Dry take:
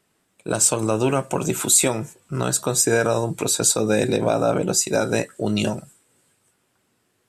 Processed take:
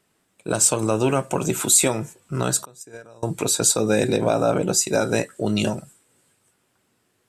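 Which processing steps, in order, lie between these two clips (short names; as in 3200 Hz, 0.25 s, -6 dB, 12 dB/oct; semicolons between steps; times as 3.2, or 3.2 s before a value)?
2.65–3.23 gate -13 dBFS, range -26 dB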